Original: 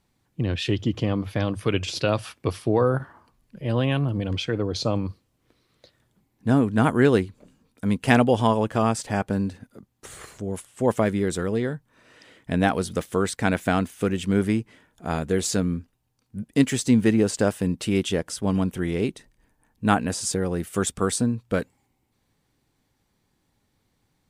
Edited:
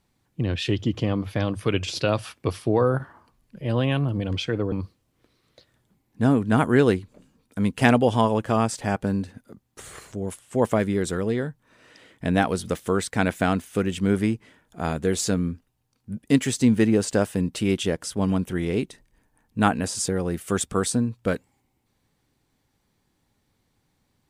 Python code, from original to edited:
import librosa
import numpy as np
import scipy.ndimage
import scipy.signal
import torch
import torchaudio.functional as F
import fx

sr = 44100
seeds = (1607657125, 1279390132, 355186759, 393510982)

y = fx.edit(x, sr, fx.cut(start_s=4.72, length_s=0.26), tone=tone)